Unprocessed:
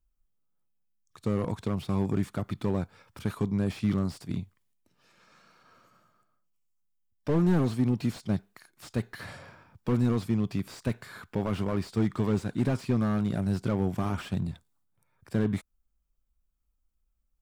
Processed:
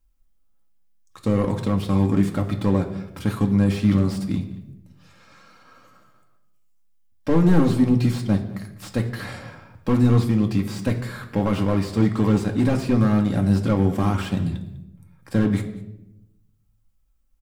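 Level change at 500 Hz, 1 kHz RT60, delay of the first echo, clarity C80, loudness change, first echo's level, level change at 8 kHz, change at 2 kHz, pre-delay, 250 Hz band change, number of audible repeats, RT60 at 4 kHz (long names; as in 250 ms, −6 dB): +7.0 dB, 0.75 s, 200 ms, 13.0 dB, +8.5 dB, −19.5 dB, +7.5 dB, +7.5 dB, 4 ms, +8.5 dB, 1, 0.65 s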